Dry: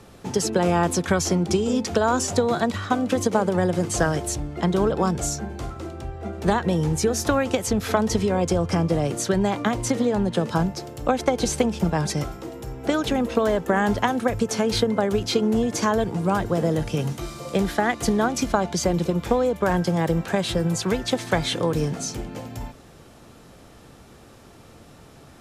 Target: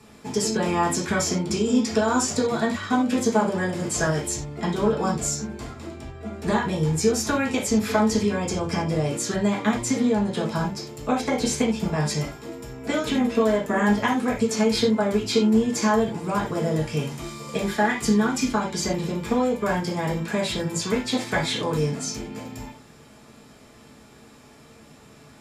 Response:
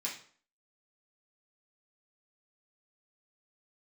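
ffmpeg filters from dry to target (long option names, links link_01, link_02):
-filter_complex "[0:a]asettb=1/sr,asplit=3[link_01][link_02][link_03];[link_01]atrim=end=17.874[link_04];[link_02]atrim=start=17.87:end=18.74,asetpts=PTS-STARTPTS,afade=type=in:duration=0.004:curve=qsin,afade=type=out:start_time=0.866:duration=0.004:curve=qsin,equalizer=frequency=670:width=3.5:gain=-8[link_05];[link_03]atrim=start=18.736[link_06];[link_04][link_05]acrossfade=duration=0.004:curve1=hsin:curve2=qsin[link_07];[link_07][link_06]acrossfade=duration=0.004:curve1=qsin:curve2=hsin[link_08];[1:a]atrim=start_sample=2205,atrim=end_sample=4410[link_09];[link_08][link_09]afir=irnorm=-1:irlink=0,volume=-1.5dB"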